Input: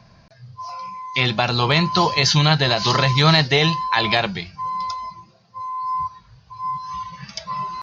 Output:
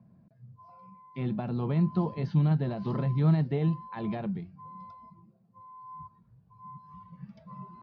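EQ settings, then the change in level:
resonant band-pass 210 Hz, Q 1.8
high-frequency loss of the air 140 metres
−2.0 dB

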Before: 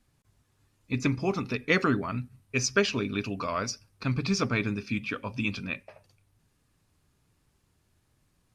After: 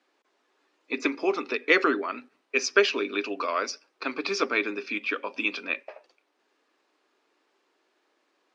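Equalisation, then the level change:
Butterworth high-pass 320 Hz 36 dB per octave
dynamic equaliser 750 Hz, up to −5 dB, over −39 dBFS, Q 0.8
high-frequency loss of the air 150 metres
+7.5 dB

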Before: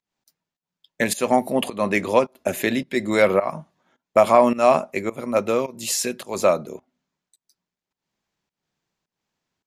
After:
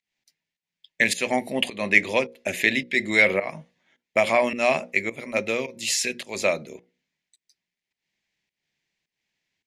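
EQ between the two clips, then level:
high-frequency loss of the air 51 metres
high shelf with overshoot 1,600 Hz +7.5 dB, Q 3
mains-hum notches 60/120/180/240/300/360/420/480/540 Hz
−4.5 dB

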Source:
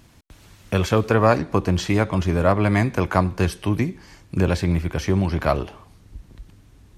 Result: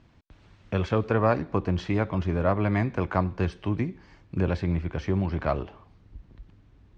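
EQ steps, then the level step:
elliptic low-pass filter 9,000 Hz
high-frequency loss of the air 120 metres
high-shelf EQ 4,200 Hz −8 dB
−4.5 dB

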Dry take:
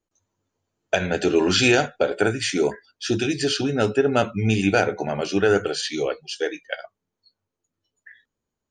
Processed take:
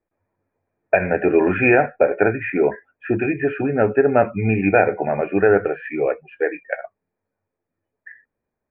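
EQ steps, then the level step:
Chebyshev low-pass with heavy ripple 2,500 Hz, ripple 6 dB
+6.5 dB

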